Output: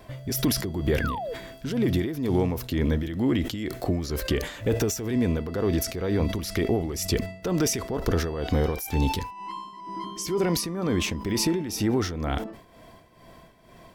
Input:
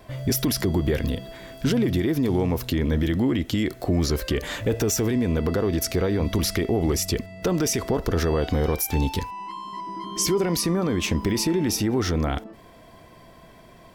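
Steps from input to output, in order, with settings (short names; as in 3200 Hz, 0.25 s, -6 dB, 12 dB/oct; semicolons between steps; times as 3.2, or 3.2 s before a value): tremolo 2.1 Hz, depth 68%; painted sound fall, 1–1.34, 430–1800 Hz -32 dBFS; sustainer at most 100 dB/s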